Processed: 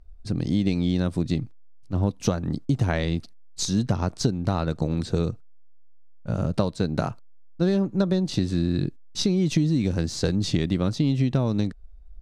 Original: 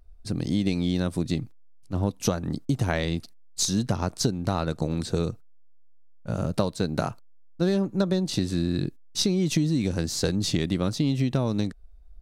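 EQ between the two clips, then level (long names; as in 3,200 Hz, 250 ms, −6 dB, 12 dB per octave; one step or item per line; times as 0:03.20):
high-frequency loss of the air 51 metres
low-shelf EQ 210 Hz +4 dB
0.0 dB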